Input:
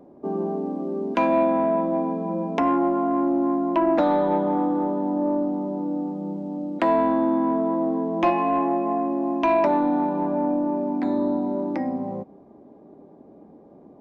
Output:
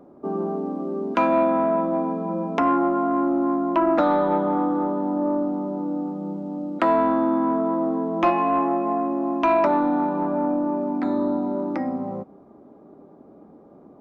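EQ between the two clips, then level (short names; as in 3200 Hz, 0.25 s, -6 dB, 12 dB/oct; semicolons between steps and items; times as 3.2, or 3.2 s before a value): bell 1300 Hz +11.5 dB 0.3 oct; 0.0 dB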